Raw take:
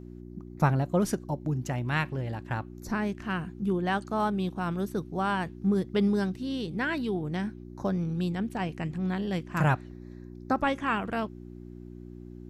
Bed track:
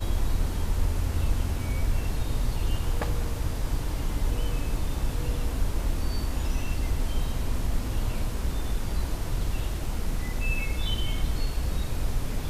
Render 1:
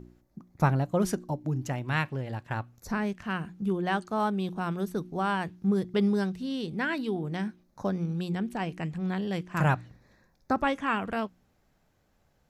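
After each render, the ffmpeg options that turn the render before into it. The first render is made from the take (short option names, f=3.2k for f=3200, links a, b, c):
-af "bandreject=f=60:t=h:w=4,bandreject=f=120:t=h:w=4,bandreject=f=180:t=h:w=4,bandreject=f=240:t=h:w=4,bandreject=f=300:t=h:w=4,bandreject=f=360:t=h:w=4"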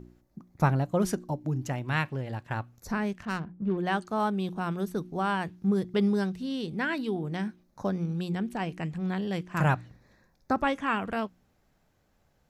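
-filter_complex "[0:a]asettb=1/sr,asplit=3[a][b][c];[a]atrim=end=3.254[d];[b]atrim=start=3.25:end=3.78,asetpts=PTS-STARTPTS,afade=t=in:d=0.004:c=qsin,afade=t=out:st=0.526:d=0.004:c=qsin,adynamicsmooth=sensitivity=5:basefreq=790[e];[c]atrim=start=3.776[f];[d][e]acrossfade=d=0.004:c1=hsin:c2=qsin[g];[g][f]acrossfade=d=0.004:c1=qsin:c2=hsin"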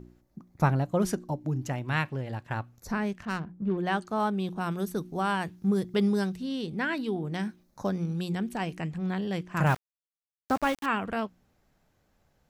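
-filter_complex "[0:a]asettb=1/sr,asplit=3[a][b][c];[a]atrim=end=4.604[d];[b]atrim=start=4.6:end=6.37,asetpts=PTS-STARTPTS,afade=t=in:d=0.004:c=qsin,afade=t=out:st=1.766:d=0.004:c=qsin,highshelf=f=5.7k:g=8[e];[c]atrim=start=6.366[f];[d][e]acrossfade=d=0.004:c1=hsin:c2=qsin[g];[g][f]acrossfade=d=0.004:c1=qsin:c2=hsin,asettb=1/sr,asplit=3[h][i][j];[h]atrim=end=7.344[k];[i]atrim=start=7.34:end=8.81,asetpts=PTS-STARTPTS,afade=t=in:d=0.004:c=qsin,afade=t=out:st=1.466:d=0.004:c=qsin,highshelf=f=4.4k:g=6.5[l];[j]atrim=start=8.806[m];[k][l]acrossfade=d=0.004:c1=hsin:c2=qsin[n];[n][m]acrossfade=d=0.004:c1=qsin:c2=hsin,asettb=1/sr,asplit=3[o][p][q];[o]atrim=end=9.664[r];[p]atrim=start=9.66:end=10.86,asetpts=PTS-STARTPTS,afade=t=in:d=0.004:c=qsin,afade=t=out:st=1.196:d=0.004:c=qsin,aeval=exprs='val(0)*gte(abs(val(0)),0.02)':c=same[s];[q]atrim=start=10.856[t];[r][s]acrossfade=d=0.004:c1=hsin:c2=qsin[u];[u][t]acrossfade=d=0.004:c1=qsin:c2=hsin"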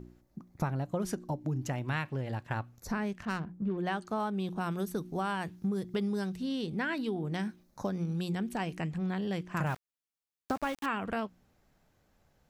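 -af "acompressor=threshold=-29dB:ratio=6"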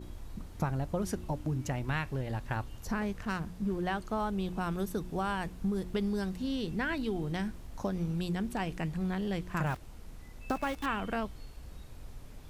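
-filter_complex "[1:a]volume=-19dB[a];[0:a][a]amix=inputs=2:normalize=0"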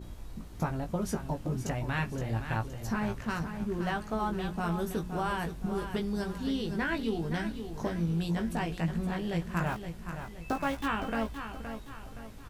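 -filter_complex "[0:a]asplit=2[a][b];[b]adelay=18,volume=-5dB[c];[a][c]amix=inputs=2:normalize=0,aecho=1:1:519|1038|1557|2076|2595:0.355|0.153|0.0656|0.0282|0.0121"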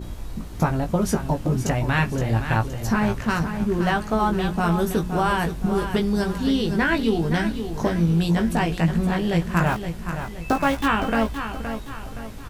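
-af "volume=10.5dB"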